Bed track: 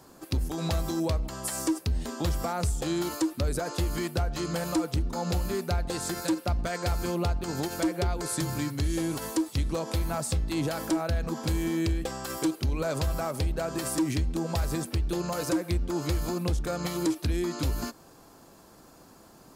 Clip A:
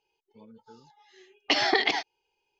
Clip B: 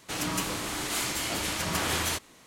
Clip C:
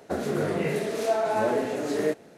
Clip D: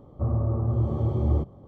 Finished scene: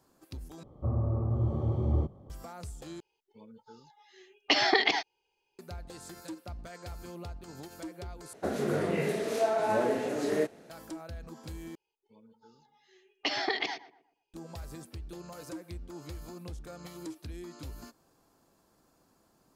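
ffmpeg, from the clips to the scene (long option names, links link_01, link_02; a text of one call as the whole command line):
ffmpeg -i bed.wav -i cue0.wav -i cue1.wav -i cue2.wav -i cue3.wav -filter_complex "[1:a]asplit=2[link_01][link_02];[0:a]volume=-14.5dB[link_03];[link_02]asplit=2[link_04][link_05];[link_05]adelay=120,lowpass=frequency=1400:poles=1,volume=-13.5dB,asplit=2[link_06][link_07];[link_07]adelay=120,lowpass=frequency=1400:poles=1,volume=0.38,asplit=2[link_08][link_09];[link_09]adelay=120,lowpass=frequency=1400:poles=1,volume=0.38,asplit=2[link_10][link_11];[link_11]adelay=120,lowpass=frequency=1400:poles=1,volume=0.38[link_12];[link_04][link_06][link_08][link_10][link_12]amix=inputs=5:normalize=0[link_13];[link_03]asplit=5[link_14][link_15][link_16][link_17][link_18];[link_14]atrim=end=0.634[link_19];[4:a]atrim=end=1.67,asetpts=PTS-STARTPTS,volume=-4.5dB[link_20];[link_15]atrim=start=2.296:end=3.004[link_21];[link_01]atrim=end=2.59,asetpts=PTS-STARTPTS,volume=-1dB[link_22];[link_16]atrim=start=5.586:end=8.334[link_23];[3:a]atrim=end=2.37,asetpts=PTS-STARTPTS,volume=-3dB[link_24];[link_17]atrim=start=10.696:end=11.754[link_25];[link_13]atrim=end=2.59,asetpts=PTS-STARTPTS,volume=-7.5dB[link_26];[link_18]atrim=start=14.336[link_27];[link_19][link_20]acrossfade=duration=0.004:curve1=hsin:curve2=hsin[link_28];[link_28][link_21]acrossfade=duration=0.004:curve1=hsin:curve2=hsin[link_29];[link_29][link_22]acrossfade=duration=0.004:curve1=hsin:curve2=hsin[link_30];[link_30][link_23]acrossfade=duration=0.004:curve1=hsin:curve2=hsin[link_31];[link_31][link_24]acrossfade=duration=0.004:curve1=hsin:curve2=hsin[link_32];[link_32][link_25]acrossfade=duration=0.004:curve1=hsin:curve2=hsin[link_33];[link_33][link_26]acrossfade=duration=0.004:curve1=hsin:curve2=hsin[link_34];[link_34][link_27]acrossfade=duration=0.004:curve1=hsin:curve2=hsin" out.wav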